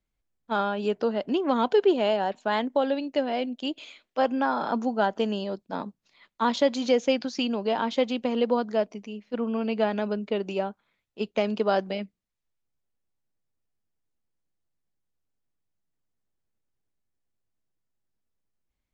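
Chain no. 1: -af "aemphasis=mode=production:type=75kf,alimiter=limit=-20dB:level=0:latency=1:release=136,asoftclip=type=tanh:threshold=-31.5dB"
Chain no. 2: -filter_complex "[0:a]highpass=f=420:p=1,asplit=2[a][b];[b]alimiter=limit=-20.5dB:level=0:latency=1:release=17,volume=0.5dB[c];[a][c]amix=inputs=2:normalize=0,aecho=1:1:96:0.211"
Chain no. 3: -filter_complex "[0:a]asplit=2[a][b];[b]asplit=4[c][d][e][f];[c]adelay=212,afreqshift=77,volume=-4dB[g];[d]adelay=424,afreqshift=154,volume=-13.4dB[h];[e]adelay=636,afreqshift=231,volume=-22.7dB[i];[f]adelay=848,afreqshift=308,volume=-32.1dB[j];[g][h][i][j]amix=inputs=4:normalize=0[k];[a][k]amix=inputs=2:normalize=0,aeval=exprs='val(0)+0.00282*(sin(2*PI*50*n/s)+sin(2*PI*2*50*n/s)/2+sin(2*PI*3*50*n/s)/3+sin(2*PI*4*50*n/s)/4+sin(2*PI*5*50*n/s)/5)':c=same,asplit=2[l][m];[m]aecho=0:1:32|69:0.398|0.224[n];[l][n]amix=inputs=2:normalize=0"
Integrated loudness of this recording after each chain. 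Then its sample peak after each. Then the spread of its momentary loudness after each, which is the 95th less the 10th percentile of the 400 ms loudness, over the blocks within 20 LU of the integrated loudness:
-36.5, -24.5, -25.0 LUFS; -31.5, -9.0, -8.0 dBFS; 6, 9, 11 LU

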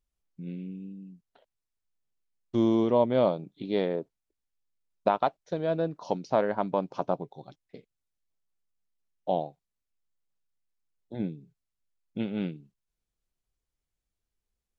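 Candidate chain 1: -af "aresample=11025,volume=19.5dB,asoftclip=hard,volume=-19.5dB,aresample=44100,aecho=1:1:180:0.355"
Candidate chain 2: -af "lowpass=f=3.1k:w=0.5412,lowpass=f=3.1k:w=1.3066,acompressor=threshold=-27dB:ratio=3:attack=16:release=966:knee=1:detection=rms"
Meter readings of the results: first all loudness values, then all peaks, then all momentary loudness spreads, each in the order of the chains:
-30.5, -35.5 LUFS; -16.5, -15.5 dBFS; 18, 18 LU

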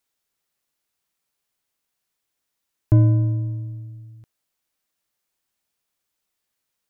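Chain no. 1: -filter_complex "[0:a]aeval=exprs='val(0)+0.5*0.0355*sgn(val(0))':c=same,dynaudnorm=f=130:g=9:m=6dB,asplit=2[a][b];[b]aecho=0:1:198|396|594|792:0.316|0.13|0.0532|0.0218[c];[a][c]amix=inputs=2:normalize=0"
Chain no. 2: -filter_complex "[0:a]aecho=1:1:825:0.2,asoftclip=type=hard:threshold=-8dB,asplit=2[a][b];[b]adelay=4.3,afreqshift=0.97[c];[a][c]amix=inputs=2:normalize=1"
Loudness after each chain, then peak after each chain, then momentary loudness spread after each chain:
-23.0, -23.5 LUFS; -2.0, -7.5 dBFS; 13, 19 LU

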